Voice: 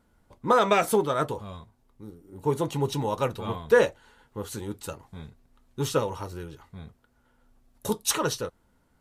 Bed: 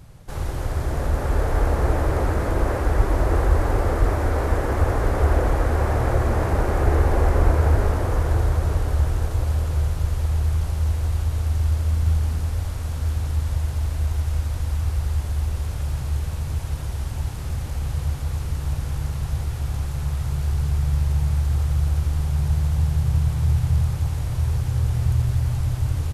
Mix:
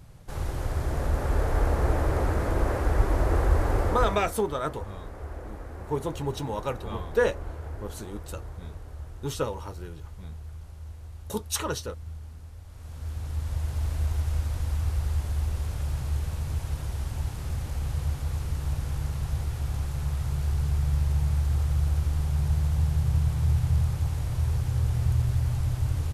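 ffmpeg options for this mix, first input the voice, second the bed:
-filter_complex "[0:a]adelay=3450,volume=-4dB[a];[1:a]volume=11.5dB,afade=t=out:st=3.82:d=0.52:silence=0.16788,afade=t=in:st=12.66:d=1.24:silence=0.16788[b];[a][b]amix=inputs=2:normalize=0"

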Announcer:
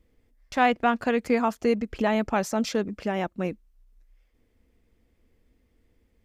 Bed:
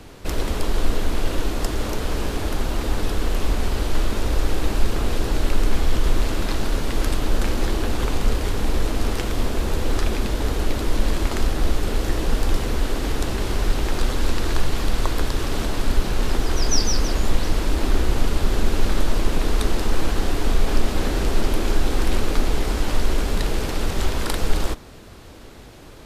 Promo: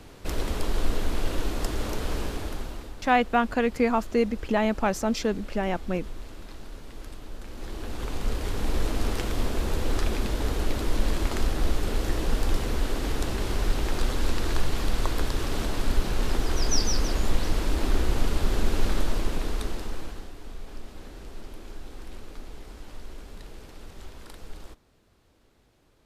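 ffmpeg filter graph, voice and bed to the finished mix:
-filter_complex "[0:a]adelay=2500,volume=0dB[a];[1:a]volume=10dB,afade=t=out:st=2.14:d=0.8:silence=0.188365,afade=t=in:st=7.47:d=1.36:silence=0.177828,afade=t=out:st=18.87:d=1.44:silence=0.149624[b];[a][b]amix=inputs=2:normalize=0"

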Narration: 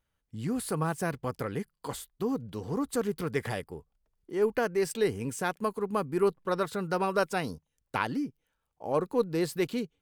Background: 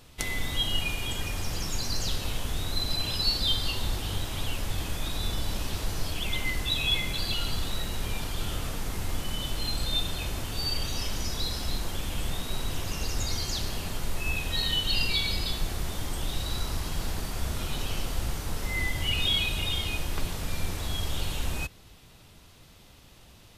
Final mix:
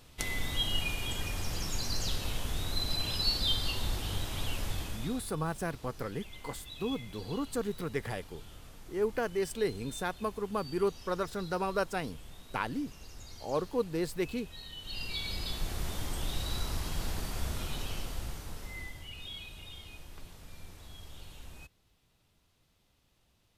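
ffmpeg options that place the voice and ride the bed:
-filter_complex "[0:a]adelay=4600,volume=-4dB[a];[1:a]volume=11.5dB,afade=t=out:st=4.67:d=0.61:silence=0.177828,afade=t=in:st=14.76:d=1.09:silence=0.177828,afade=t=out:st=17.38:d=1.7:silence=0.188365[b];[a][b]amix=inputs=2:normalize=0"

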